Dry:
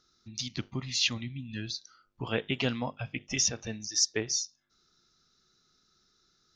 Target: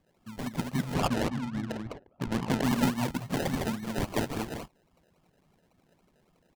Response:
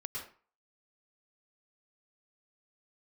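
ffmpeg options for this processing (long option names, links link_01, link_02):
-filter_complex "[0:a]highpass=150,equalizer=frequency=170:width_type=q:width=4:gain=10,equalizer=frequency=250:width_type=q:width=4:gain=5,equalizer=frequency=940:width_type=q:width=4:gain=4,equalizer=frequency=3600:width_type=q:width=4:gain=3,equalizer=frequency=5200:width_type=q:width=4:gain=-10,lowpass=frequency=7600:width=0.5412,lowpass=frequency=7600:width=1.3066,aecho=1:1:1:0.87,asplit=2[link_01][link_02];[link_02]aecho=0:1:157.4|207:0.355|0.708[link_03];[link_01][link_03]amix=inputs=2:normalize=0,acrusher=samples=31:mix=1:aa=0.000001:lfo=1:lforange=18.6:lforate=3.6,asettb=1/sr,asplit=3[link_04][link_05][link_06];[link_04]atrim=end=0.944[link_07];[link_05]atrim=start=0.94:end=2.64,asetpts=PTS-STARTPTS,afade=type=in:duration=0.004:curve=qsin,afade=type=out:start_time=1.696:duration=0.004:curve=qsin,adynamicsmooth=sensitivity=6.5:basefreq=980[link_08];[link_06]atrim=start=2.636[link_09];[link_07][link_08]acrossfade=duration=0.004:curve1=hsin:curve2=qsin[link_10];[link_10][link_09]acrossfade=duration=0.004:curve1=qsin:curve2=hsin,volume=-1.5dB"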